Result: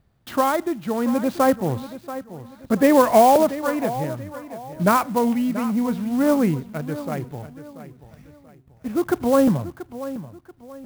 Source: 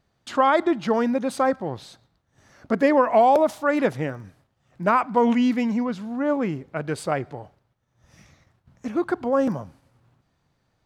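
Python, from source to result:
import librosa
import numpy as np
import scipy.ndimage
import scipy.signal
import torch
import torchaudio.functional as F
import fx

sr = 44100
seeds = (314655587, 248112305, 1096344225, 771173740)

p1 = scipy.signal.sosfilt(scipy.signal.butter(2, 5800.0, 'lowpass', fs=sr, output='sos'), x)
p2 = fx.low_shelf(p1, sr, hz=210.0, db=11.0)
p3 = fx.quant_dither(p2, sr, seeds[0], bits=6, dither='none')
p4 = p2 + (p3 * 10.0 ** (-11.0 / 20.0))
p5 = p4 * (1.0 - 0.66 / 2.0 + 0.66 / 2.0 * np.cos(2.0 * np.pi * 0.64 * (np.arange(len(p4)) / sr)))
p6 = p5 + fx.echo_feedback(p5, sr, ms=684, feedback_pct=34, wet_db=-14, dry=0)
y = fx.clock_jitter(p6, sr, seeds[1], jitter_ms=0.03)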